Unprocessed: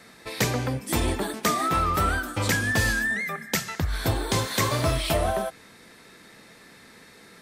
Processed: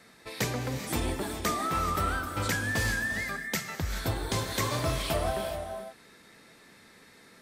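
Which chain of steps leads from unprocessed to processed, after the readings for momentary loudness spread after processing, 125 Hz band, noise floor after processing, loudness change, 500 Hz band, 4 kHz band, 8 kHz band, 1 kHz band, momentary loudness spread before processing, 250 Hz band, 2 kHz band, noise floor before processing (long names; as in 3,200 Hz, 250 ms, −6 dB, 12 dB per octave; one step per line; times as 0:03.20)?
7 LU, −5.5 dB, −56 dBFS, −5.5 dB, −5.0 dB, −5.0 dB, −5.0 dB, −5.0 dB, 6 LU, −5.5 dB, −5.0 dB, −51 dBFS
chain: reverb whose tail is shaped and stops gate 450 ms rising, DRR 7 dB
level −6 dB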